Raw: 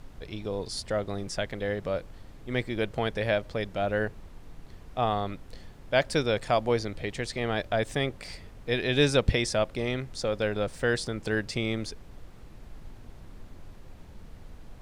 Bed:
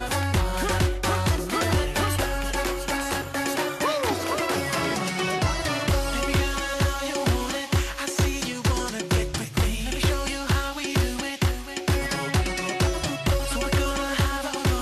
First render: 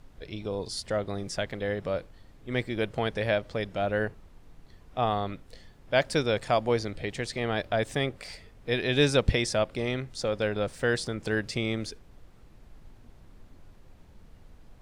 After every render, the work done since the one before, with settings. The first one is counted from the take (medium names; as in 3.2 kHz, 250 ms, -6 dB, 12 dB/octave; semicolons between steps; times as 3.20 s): noise print and reduce 6 dB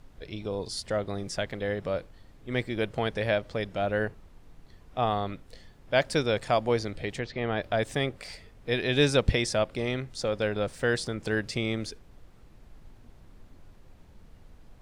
7.19–7.62 s: Gaussian low-pass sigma 2.1 samples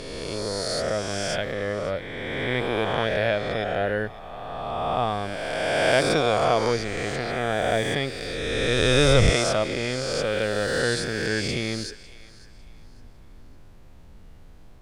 reverse spectral sustain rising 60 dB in 2.52 s; thinning echo 552 ms, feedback 30%, high-pass 910 Hz, level -18 dB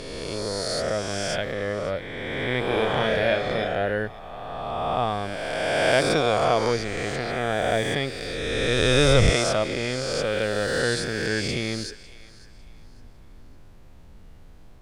2.64–3.68 s: flutter echo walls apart 5.4 m, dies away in 0.37 s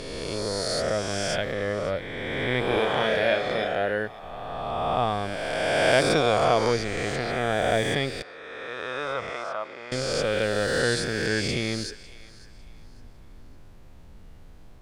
2.79–4.23 s: bass shelf 140 Hz -11 dB; 8.22–9.92 s: band-pass filter 1.1 kHz, Q 2.3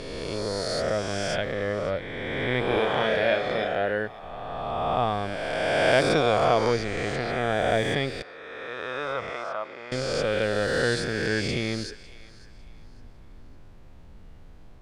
treble shelf 6.6 kHz -8.5 dB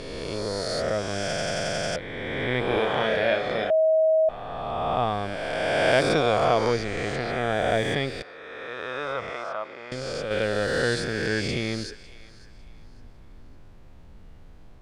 1.24 s: stutter in place 0.09 s, 8 plays; 3.70–4.29 s: bleep 636 Hz -16.5 dBFS; 9.77–10.31 s: compression 3:1, threshold -28 dBFS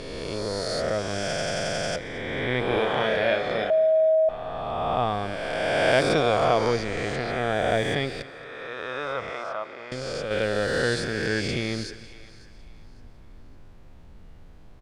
feedback delay 223 ms, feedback 51%, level -19 dB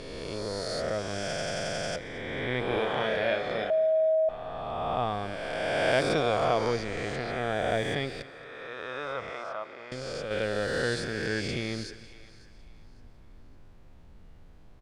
trim -4.5 dB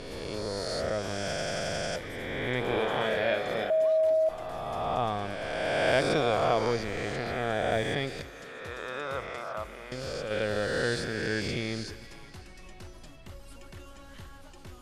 add bed -24.5 dB